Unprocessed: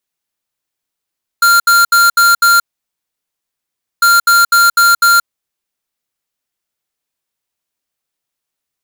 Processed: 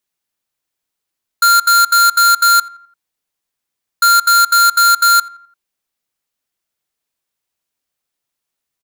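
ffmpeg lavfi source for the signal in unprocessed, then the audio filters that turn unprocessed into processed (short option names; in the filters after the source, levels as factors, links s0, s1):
-f lavfi -i "aevalsrc='0.398*(2*lt(mod(1390*t,1),0.5)-1)*clip(min(mod(mod(t,2.6),0.25),0.18-mod(mod(t,2.6),0.25))/0.005,0,1)*lt(mod(t,2.6),1.25)':d=5.2:s=44100"
-filter_complex "[0:a]acrossover=split=1100[s0][s1];[s0]asoftclip=type=tanh:threshold=0.0562[s2];[s2][s1]amix=inputs=2:normalize=0,asplit=2[s3][s4];[s4]adelay=85,lowpass=f=2000:p=1,volume=0.119,asplit=2[s5][s6];[s6]adelay=85,lowpass=f=2000:p=1,volume=0.53,asplit=2[s7][s8];[s8]adelay=85,lowpass=f=2000:p=1,volume=0.53,asplit=2[s9][s10];[s10]adelay=85,lowpass=f=2000:p=1,volume=0.53[s11];[s3][s5][s7][s9][s11]amix=inputs=5:normalize=0"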